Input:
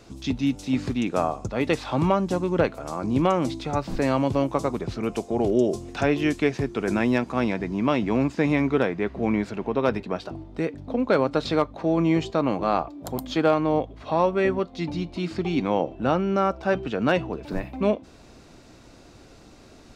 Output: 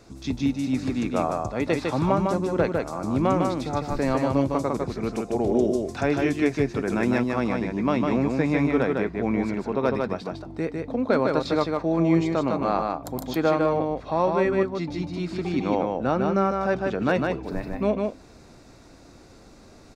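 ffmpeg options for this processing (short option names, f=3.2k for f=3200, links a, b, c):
-af "equalizer=f=3k:w=4.1:g=-7.5,aecho=1:1:153:0.668,volume=-1.5dB"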